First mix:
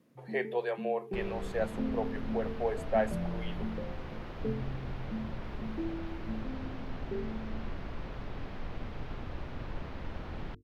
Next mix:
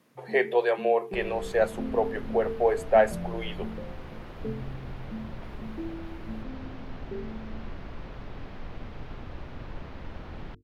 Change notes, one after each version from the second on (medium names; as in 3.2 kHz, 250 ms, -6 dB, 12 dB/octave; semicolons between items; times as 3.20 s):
speech +9.0 dB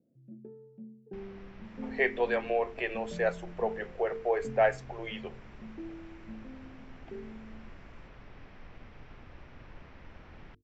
speech: entry +1.65 s; second sound -5.0 dB; master: add rippled Chebyshev low-pass 7.6 kHz, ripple 6 dB